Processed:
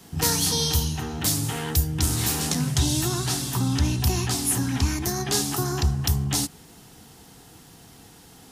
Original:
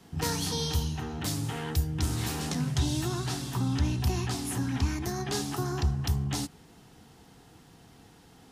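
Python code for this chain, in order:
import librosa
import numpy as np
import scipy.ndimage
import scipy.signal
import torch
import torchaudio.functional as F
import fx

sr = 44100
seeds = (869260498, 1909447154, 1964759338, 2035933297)

y = fx.high_shelf(x, sr, hz=5700.0, db=11.5)
y = F.gain(torch.from_numpy(y), 4.5).numpy()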